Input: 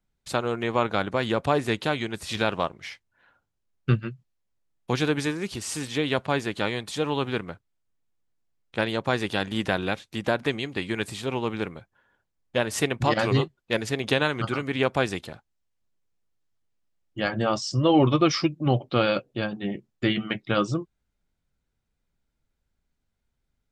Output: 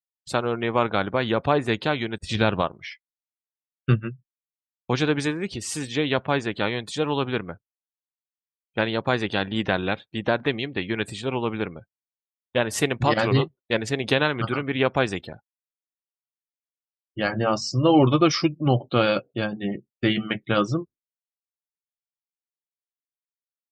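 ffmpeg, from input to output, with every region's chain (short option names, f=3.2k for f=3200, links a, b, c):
-filter_complex "[0:a]asettb=1/sr,asplit=3[a][b][c];[a]atrim=end=2.184[d];[b]atrim=start=2.18:end=2.62,asetpts=PTS-STARTPTS,afade=t=in:d=0.004:c=qsin,afade=t=out:st=0.436:d=0.004:c=qsin,lowshelf=f=210:g=9,agate=range=-33dB:threshold=-35dB:ratio=3:release=100:detection=peak[e];[c]atrim=start=2.616[f];[d][e]acrossfade=d=0.004:c1=hsin:c2=qsin[g];[g][f]acrossfade=d=0.004:c1=qsin:c2=hsin,asettb=1/sr,asplit=3[h][i][j];[h]atrim=end=17.224[k];[i]atrim=start=17.22:end=17.99,asetpts=PTS-STARTPTS,afade=t=in:d=0.004:c=qsin,afade=t=out:st=0.766:d=0.004:c=qsin,bandreject=f=3.4k:w=7.1,bandreject=f=45.6:t=h:w=4,bandreject=f=91.2:t=h:w=4,bandreject=f=136.8:t=h:w=4,bandreject=f=182.4:t=h:w=4,bandreject=f=228:t=h:w=4[l];[j]atrim=start=17.986[m];[k][l]acrossfade=d=0.004:c1=hsin:c2=qsin[n];[n][m]acrossfade=d=0.004:c1=qsin:c2=hsin,agate=range=-33dB:threshold=-44dB:ratio=3:detection=peak,afftdn=nr=34:nf=-44,volume=2dB"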